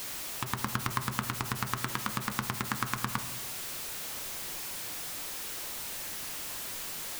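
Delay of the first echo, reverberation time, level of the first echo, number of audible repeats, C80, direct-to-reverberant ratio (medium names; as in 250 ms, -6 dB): no echo, 1.2 s, no echo, no echo, 14.5 dB, 9.5 dB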